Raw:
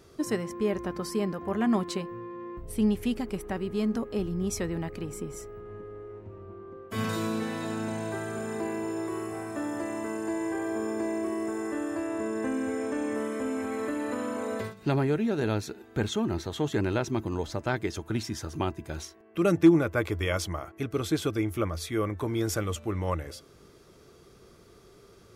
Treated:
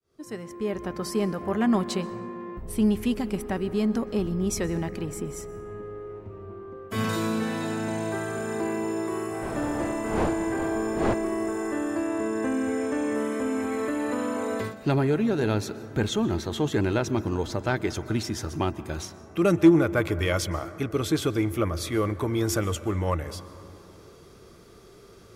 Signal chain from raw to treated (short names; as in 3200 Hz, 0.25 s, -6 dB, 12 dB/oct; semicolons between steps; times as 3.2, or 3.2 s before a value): opening faded in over 1.17 s; 9.41–11.13 wind noise 610 Hz -33 dBFS; in parallel at -8 dB: soft clip -25.5 dBFS, distortion -9 dB; on the sum: plate-style reverb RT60 3 s, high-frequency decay 0.25×, pre-delay 0.11 s, DRR 15.5 dB; gain +1 dB